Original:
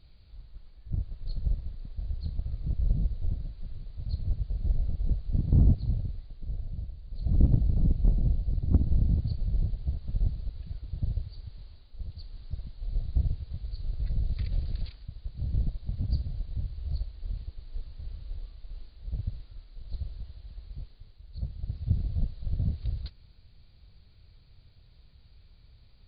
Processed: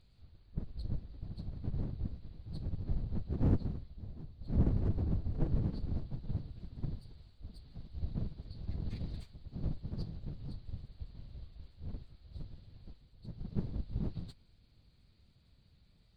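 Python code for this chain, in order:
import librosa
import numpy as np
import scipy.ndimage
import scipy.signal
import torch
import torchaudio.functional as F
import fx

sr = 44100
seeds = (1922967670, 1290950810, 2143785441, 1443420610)

y = np.abs(x)
y = fx.stretch_vocoder_free(y, sr, factor=0.62)
y = fx.cheby_harmonics(y, sr, harmonics=(3, 6), levels_db=(-20, -25), full_scale_db=-13.5)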